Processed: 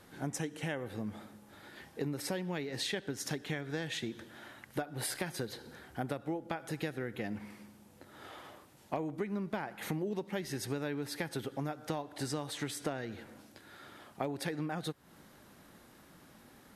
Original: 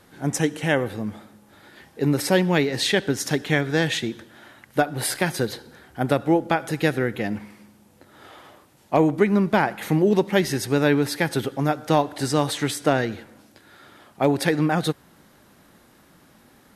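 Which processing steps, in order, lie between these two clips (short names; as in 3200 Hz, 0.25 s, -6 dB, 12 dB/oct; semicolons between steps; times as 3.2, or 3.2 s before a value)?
compressor 6:1, threshold -30 dBFS, peak gain reduction 16.5 dB; gain -4 dB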